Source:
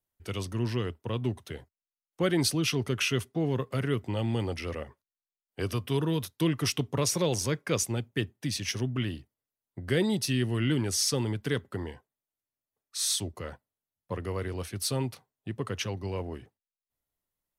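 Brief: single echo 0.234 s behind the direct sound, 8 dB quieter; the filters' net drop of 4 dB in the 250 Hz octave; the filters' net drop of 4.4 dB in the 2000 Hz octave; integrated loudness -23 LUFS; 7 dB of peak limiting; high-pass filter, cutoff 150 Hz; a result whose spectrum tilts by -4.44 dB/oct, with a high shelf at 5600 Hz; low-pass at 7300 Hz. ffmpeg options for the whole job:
-af "highpass=150,lowpass=7.3k,equalizer=f=250:t=o:g=-4.5,equalizer=f=2k:t=o:g=-5,highshelf=f=5.6k:g=-4,alimiter=limit=-23dB:level=0:latency=1,aecho=1:1:234:0.398,volume=12dB"

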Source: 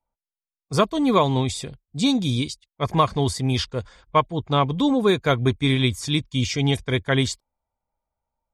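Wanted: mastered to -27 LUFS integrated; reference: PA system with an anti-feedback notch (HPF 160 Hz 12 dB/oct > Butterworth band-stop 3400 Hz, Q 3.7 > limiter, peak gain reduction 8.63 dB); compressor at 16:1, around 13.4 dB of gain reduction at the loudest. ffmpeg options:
-af "acompressor=threshold=-26dB:ratio=16,highpass=160,asuperstop=centerf=3400:order=8:qfactor=3.7,volume=8dB,alimiter=limit=-15dB:level=0:latency=1"

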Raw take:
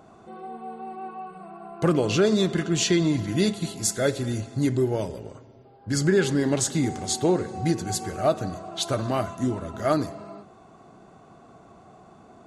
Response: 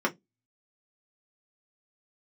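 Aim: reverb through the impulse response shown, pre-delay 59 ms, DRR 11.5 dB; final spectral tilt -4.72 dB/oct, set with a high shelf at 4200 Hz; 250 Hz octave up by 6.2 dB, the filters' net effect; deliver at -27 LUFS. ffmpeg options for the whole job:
-filter_complex "[0:a]equalizer=f=250:t=o:g=8.5,highshelf=f=4.2k:g=9,asplit=2[a][b];[1:a]atrim=start_sample=2205,adelay=59[c];[b][c]afir=irnorm=-1:irlink=0,volume=-22.5dB[d];[a][d]amix=inputs=2:normalize=0,volume=-7.5dB"

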